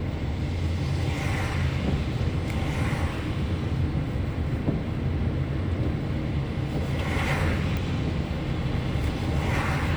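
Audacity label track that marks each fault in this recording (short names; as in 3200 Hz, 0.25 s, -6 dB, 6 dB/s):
7.770000	7.770000	pop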